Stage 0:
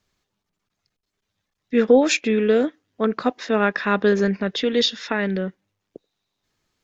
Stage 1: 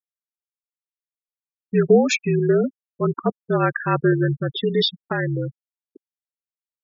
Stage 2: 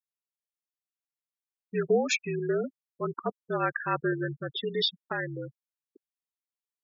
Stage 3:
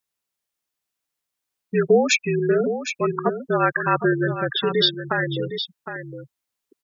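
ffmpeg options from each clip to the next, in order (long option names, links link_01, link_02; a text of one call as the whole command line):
ffmpeg -i in.wav -af "afreqshift=-52,afftfilt=real='re*gte(hypot(re,im),0.112)':imag='im*gte(hypot(re,im),0.112)':win_size=1024:overlap=0.75" out.wav
ffmpeg -i in.wav -af "lowshelf=frequency=330:gain=-11,volume=-5.5dB" out.wav
ffmpeg -i in.wav -filter_complex "[0:a]asplit=2[link_01][link_02];[link_02]acompressor=threshold=-36dB:ratio=6,volume=-3dB[link_03];[link_01][link_03]amix=inputs=2:normalize=0,aecho=1:1:761:0.335,volume=7dB" out.wav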